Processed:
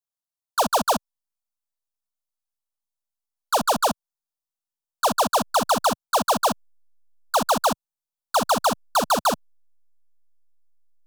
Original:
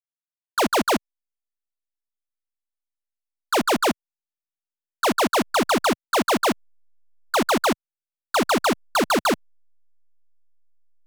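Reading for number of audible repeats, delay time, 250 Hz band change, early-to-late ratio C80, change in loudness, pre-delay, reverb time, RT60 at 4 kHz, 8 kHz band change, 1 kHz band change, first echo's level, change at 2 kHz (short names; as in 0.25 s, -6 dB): none, none, -6.0 dB, none, -0.5 dB, none, none, none, +2.0 dB, +2.0 dB, none, -5.5 dB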